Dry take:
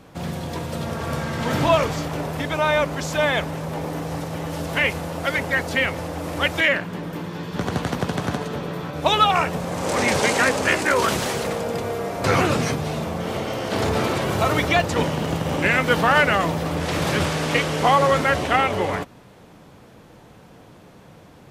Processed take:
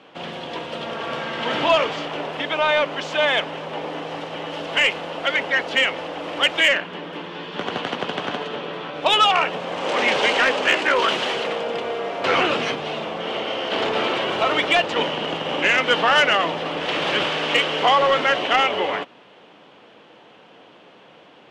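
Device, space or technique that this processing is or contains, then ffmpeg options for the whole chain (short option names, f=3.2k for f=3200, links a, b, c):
intercom: -af "highpass=340,lowpass=3.6k,equalizer=f=3k:t=o:w=0.48:g=10.5,asoftclip=type=tanh:threshold=-9dB,volume=1.5dB"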